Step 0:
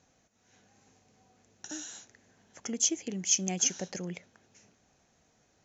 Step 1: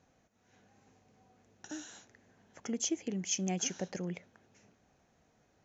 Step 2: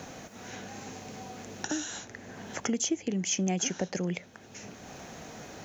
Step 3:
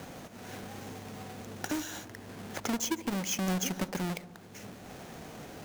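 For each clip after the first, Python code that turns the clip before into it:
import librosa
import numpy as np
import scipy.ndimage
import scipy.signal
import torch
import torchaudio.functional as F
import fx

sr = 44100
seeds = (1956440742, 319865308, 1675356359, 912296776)

y1 = fx.high_shelf(x, sr, hz=3900.0, db=-11.5)
y2 = fx.band_squash(y1, sr, depth_pct=70)
y2 = y2 * 10.0 ** (7.5 / 20.0)
y3 = fx.halfwave_hold(y2, sr)
y3 = fx.echo_wet_lowpass(y3, sr, ms=70, feedback_pct=73, hz=1000.0, wet_db=-14.5)
y3 = y3 * 10.0 ** (-6.0 / 20.0)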